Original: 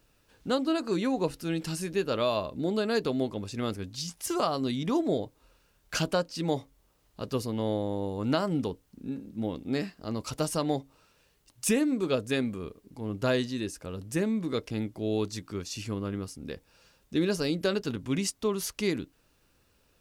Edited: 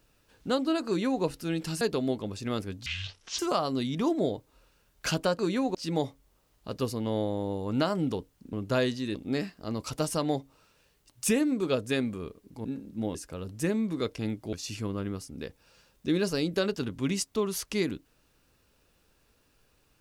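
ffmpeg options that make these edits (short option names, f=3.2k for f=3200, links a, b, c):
-filter_complex "[0:a]asplit=11[a][b][c][d][e][f][g][h][i][j][k];[a]atrim=end=1.812[l];[b]atrim=start=2.928:end=3.984[m];[c]atrim=start=3.98:end=4.27,asetpts=PTS-STARTPTS,asetrate=24255,aresample=44100[n];[d]atrim=start=4.266:end=6.272[o];[e]atrim=start=0.868:end=1.232[p];[f]atrim=start=6.268:end=9.052[q];[g]atrim=start=13.048:end=13.672[r];[h]atrim=start=9.548:end=13.052[s];[i]atrim=start=9.048:end=9.552[t];[j]atrim=start=13.668:end=15.052[u];[k]atrim=start=15.598[v];[l][m]acrossfade=d=0.004:c1=hsin:c2=hsin[w];[w][n]acrossfade=d=0.004:c1=hsin:c2=hsin[x];[x][o]acrossfade=d=0.004:c1=hsin:c2=hsin[y];[y][p]acrossfade=d=0.004:c1=hsin:c2=hsin[z];[z][q]acrossfade=d=0.004:c1=hsin:c2=hsin[aa];[aa][r]acrossfade=d=0.004:c1=hsin:c2=hsin[ab];[ab][s]acrossfade=d=0.004:c1=hsin:c2=hsin[ac];[ac][t]acrossfade=d=0.004:c1=hsin:c2=hsin[ad];[ad][u]acrossfade=d=0.004:c1=hsin:c2=hsin[ae];[ae][v]acrossfade=d=0.004:c1=hsin:c2=hsin"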